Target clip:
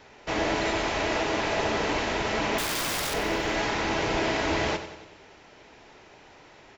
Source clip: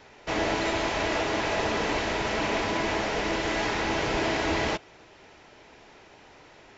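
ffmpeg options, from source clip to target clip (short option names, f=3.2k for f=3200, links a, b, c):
-filter_complex "[0:a]asettb=1/sr,asplit=3[a][b][c];[a]atrim=end=2.584[d];[b]atrim=start=2.58:end=3.14,asetpts=PTS-STARTPTS,afade=t=in:d=0.004:c=qsin,afade=t=out:st=0.556:d=0.004:c=qsin,aeval=exprs='(mod(15.8*val(0)+1,2)-1)/15.8':c=same[e];[c]atrim=start=3.136[f];[d][e]acrossfade=d=0.004:c1=hsin:c2=qsin[g];[g][f]acrossfade=d=0.004:c1=qsin:c2=hsin,aecho=1:1:93|186|279|372|465|558:0.266|0.146|0.0805|0.0443|0.0243|0.0134"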